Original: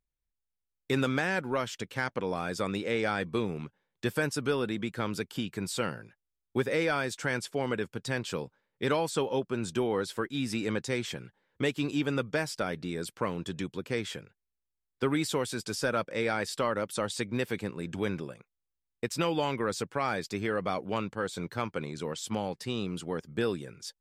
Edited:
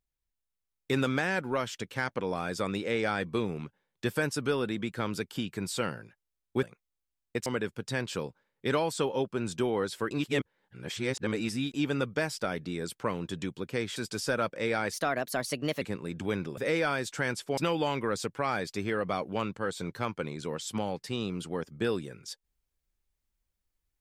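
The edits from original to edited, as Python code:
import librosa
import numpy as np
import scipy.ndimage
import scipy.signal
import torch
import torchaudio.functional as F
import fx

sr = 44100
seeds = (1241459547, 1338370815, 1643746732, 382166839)

y = fx.edit(x, sr, fx.swap(start_s=6.63, length_s=1.0, other_s=18.31, other_length_s=0.83),
    fx.reverse_span(start_s=10.28, length_s=1.63),
    fx.cut(start_s=14.13, length_s=1.38),
    fx.speed_span(start_s=16.48, length_s=1.07, speed=1.21), tone=tone)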